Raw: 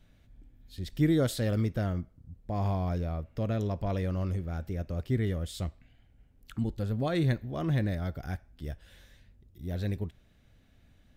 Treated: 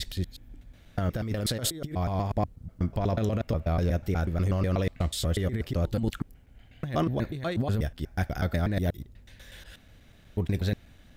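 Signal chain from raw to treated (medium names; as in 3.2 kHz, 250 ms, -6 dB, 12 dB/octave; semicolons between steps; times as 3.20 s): slices played last to first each 122 ms, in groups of 8; bass shelf 500 Hz -3.5 dB; compressor with a negative ratio -34 dBFS, ratio -0.5; trim +8 dB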